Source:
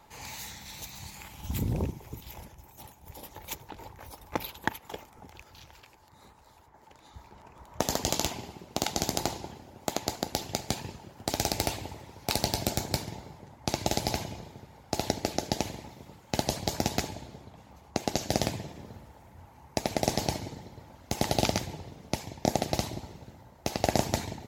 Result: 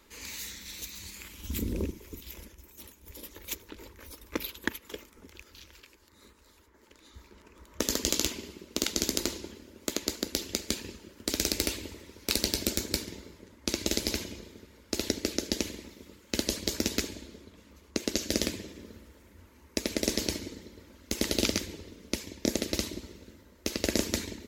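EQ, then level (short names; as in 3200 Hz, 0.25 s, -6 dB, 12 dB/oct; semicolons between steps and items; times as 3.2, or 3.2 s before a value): fixed phaser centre 320 Hz, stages 4; +2.5 dB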